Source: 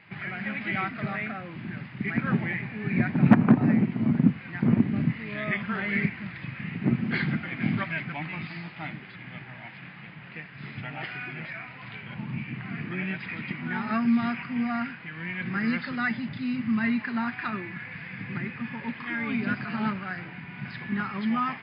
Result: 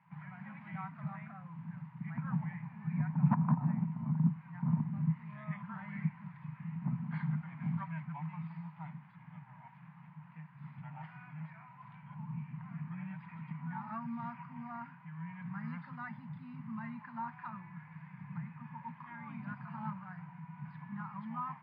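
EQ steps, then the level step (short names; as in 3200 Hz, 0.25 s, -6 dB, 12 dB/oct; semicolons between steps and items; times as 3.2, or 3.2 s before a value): double band-pass 390 Hz, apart 2.6 oct; -1.0 dB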